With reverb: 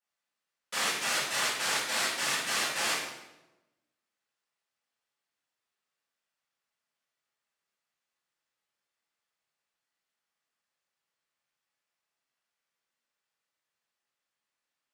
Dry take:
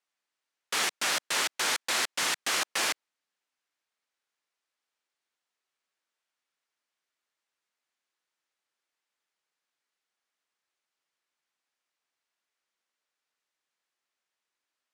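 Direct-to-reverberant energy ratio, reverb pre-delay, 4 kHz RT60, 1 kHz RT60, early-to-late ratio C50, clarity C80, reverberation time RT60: -11.0 dB, 3 ms, 0.80 s, 0.90 s, 1.5 dB, 4.5 dB, 1.0 s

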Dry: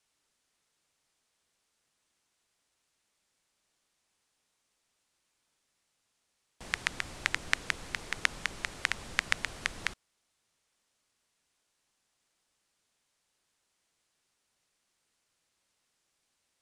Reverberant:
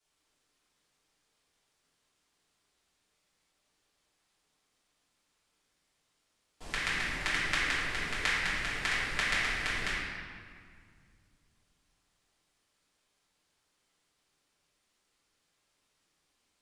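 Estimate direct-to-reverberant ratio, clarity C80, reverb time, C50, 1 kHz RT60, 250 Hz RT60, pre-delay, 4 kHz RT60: -11.0 dB, 0.5 dB, 2.1 s, -1.5 dB, 2.0 s, 2.9 s, 3 ms, 1.4 s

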